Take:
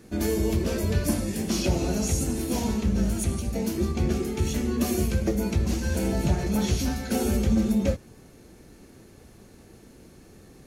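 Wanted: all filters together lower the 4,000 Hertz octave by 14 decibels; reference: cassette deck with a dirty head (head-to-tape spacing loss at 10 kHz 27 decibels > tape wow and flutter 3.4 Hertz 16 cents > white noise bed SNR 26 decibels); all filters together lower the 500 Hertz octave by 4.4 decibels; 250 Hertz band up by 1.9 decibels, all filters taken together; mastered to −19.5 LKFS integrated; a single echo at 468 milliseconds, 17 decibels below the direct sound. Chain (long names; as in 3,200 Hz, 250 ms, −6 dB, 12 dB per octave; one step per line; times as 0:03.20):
head-to-tape spacing loss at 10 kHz 27 dB
parametric band 250 Hz +4.5 dB
parametric band 500 Hz −6.5 dB
parametric band 4,000 Hz −4 dB
single-tap delay 468 ms −17 dB
tape wow and flutter 3.4 Hz 16 cents
white noise bed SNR 26 dB
level +6.5 dB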